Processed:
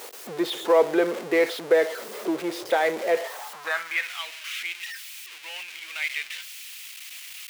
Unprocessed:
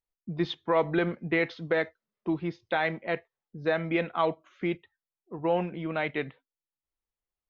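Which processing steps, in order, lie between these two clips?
jump at every zero crossing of -30 dBFS; high-pass sweep 440 Hz -> 2.5 kHz, 3.08–4.19 s

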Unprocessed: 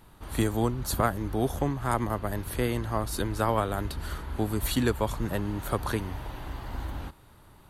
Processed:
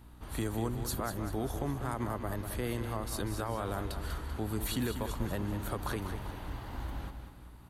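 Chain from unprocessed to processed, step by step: peak limiter -19.5 dBFS, peak gain reduction 8.5 dB; feedback delay 194 ms, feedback 45%, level -8.5 dB; hum 60 Hz, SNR 18 dB; trim -4.5 dB

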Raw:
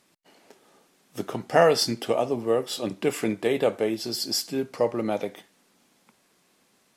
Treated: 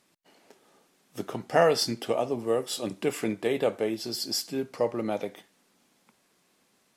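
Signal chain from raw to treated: 2.39–3.05 s: peaking EQ 9.1 kHz +5.5 dB 1.1 oct; trim -3 dB

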